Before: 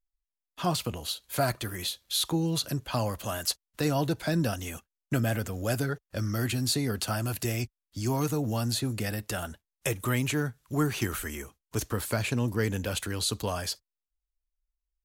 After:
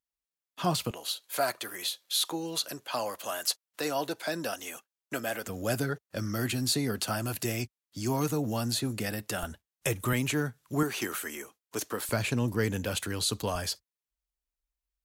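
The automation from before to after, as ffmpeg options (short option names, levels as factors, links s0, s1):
-af "asetnsamples=n=441:p=0,asendcmd='0.91 highpass f 420;5.47 highpass f 130;9.43 highpass f 49;10.13 highpass f 130;10.83 highpass f 290;12.09 highpass f 90;13.55 highpass f 43',highpass=100"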